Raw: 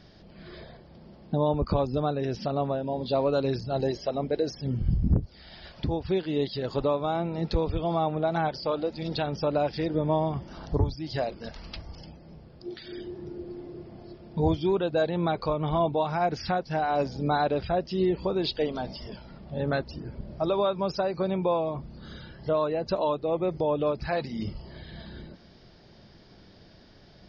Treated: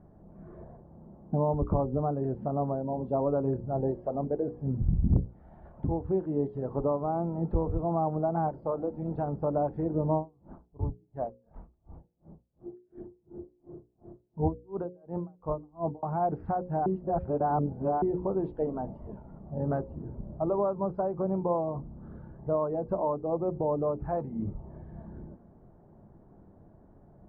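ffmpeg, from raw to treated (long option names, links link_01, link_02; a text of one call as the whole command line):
ffmpeg -i in.wav -filter_complex "[0:a]asettb=1/sr,asplit=3[link_01][link_02][link_03];[link_01]atrim=end=10.164[link_04];[link_02]atrim=start=10.16:end=16.03,asetpts=PTS-STARTPTS,afade=type=in:duration=0.004:curve=qsin,afade=type=out:start_time=5.866:duration=0.004:curve=qsin,aeval=exprs='val(0)*pow(10,-37*(0.5-0.5*cos(2*PI*2.8*n/s))/20)':channel_layout=same[link_05];[link_03]atrim=start=16.026[link_06];[link_04][link_05]acrossfade=duration=0.004:curve1=hsin:curve2=qsin[link_07];[link_07][link_06]acrossfade=duration=0.004:curve1=qsin:curve2=hsin,asplit=3[link_08][link_09][link_10];[link_08]atrim=end=16.862[link_11];[link_09]atrim=start=16.858:end=18.022,asetpts=PTS-STARTPTS,areverse[link_12];[link_10]atrim=start=18.018[link_13];[link_11][link_12]acrossfade=duration=0.004:curve1=hsin:curve2=hsin[link_14];[link_14][link_13]acrossfade=duration=0.004:curve1=hsin:curve2=hsin,lowpass=frequency=1000:width=0.5412,lowpass=frequency=1000:width=1.3066,equalizer=frequency=530:width=1.7:gain=-3,bandreject=frequency=60:width_type=h:width=6,bandreject=frequency=120:width_type=h:width=6,bandreject=frequency=180:width_type=h:width=6,bandreject=frequency=240:width_type=h:width=6,bandreject=frequency=300:width_type=h:width=6,bandreject=frequency=360:width_type=h:width=6,bandreject=frequency=420:width_type=h:width=6,bandreject=frequency=480:width_type=h:width=6,bandreject=frequency=540:width_type=h:width=6" out.wav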